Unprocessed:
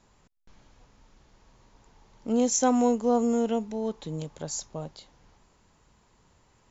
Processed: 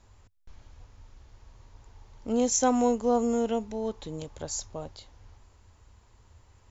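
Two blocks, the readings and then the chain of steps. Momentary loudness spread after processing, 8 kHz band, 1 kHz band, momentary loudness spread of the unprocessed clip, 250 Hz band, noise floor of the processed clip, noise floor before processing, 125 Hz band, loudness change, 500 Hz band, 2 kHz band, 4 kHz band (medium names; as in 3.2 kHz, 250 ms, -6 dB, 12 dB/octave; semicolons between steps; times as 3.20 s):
17 LU, no reading, 0.0 dB, 17 LU, -2.5 dB, -60 dBFS, -64 dBFS, -3.5 dB, -1.0 dB, -0.5 dB, 0.0 dB, 0.0 dB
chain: resonant low shelf 120 Hz +7.5 dB, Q 3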